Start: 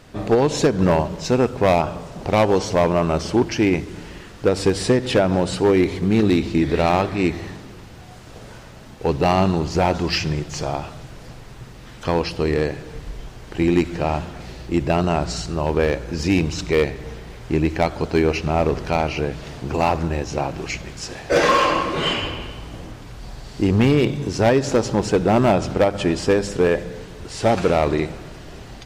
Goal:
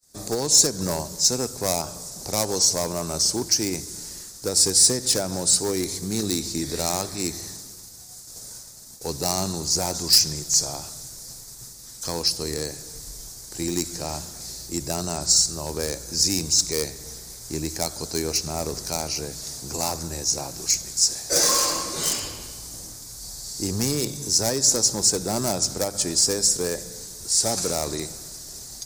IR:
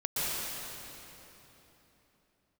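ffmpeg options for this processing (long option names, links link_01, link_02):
-filter_complex "[0:a]agate=range=-33dB:threshold=-36dB:ratio=3:detection=peak,acrossover=split=180|1100[link_01][link_02][link_03];[link_03]aeval=exprs='clip(val(0),-1,0.0944)':channel_layout=same[link_04];[link_01][link_02][link_04]amix=inputs=3:normalize=0,aexciter=amount=14.3:drive=8.6:freq=4600,volume=-10.5dB"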